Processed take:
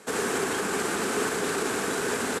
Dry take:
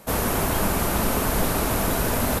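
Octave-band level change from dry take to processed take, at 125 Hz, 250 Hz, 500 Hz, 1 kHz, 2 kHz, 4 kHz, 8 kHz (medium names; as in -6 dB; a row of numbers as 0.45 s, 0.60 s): -15.0 dB, -5.5 dB, -1.5 dB, -4.5 dB, +0.5 dB, -2.0 dB, -3.0 dB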